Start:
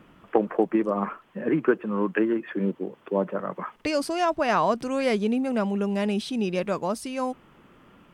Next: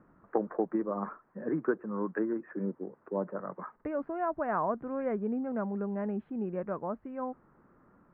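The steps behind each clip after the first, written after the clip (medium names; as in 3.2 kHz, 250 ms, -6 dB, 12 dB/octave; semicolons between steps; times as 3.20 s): steep low-pass 1.7 kHz 36 dB/octave; trim -8 dB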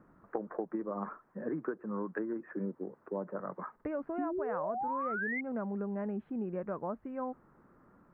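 painted sound rise, 4.18–5.41 s, 270–2200 Hz -29 dBFS; compression, threshold -32 dBFS, peak gain reduction 9.5 dB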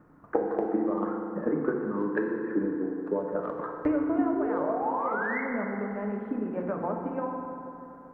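transient shaper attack +8 dB, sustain +2 dB; FDN reverb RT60 2.9 s, high-frequency decay 0.5×, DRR 0 dB; trim +1.5 dB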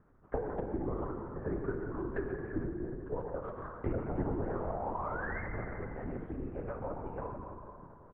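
on a send: delay 133 ms -10 dB; on the sum: LPC vocoder at 8 kHz whisper; trim -8 dB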